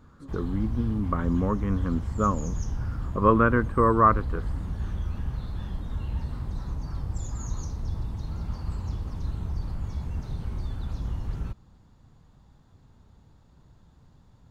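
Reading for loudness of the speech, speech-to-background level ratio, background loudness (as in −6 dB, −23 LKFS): −25.0 LKFS, 9.0 dB, −34.0 LKFS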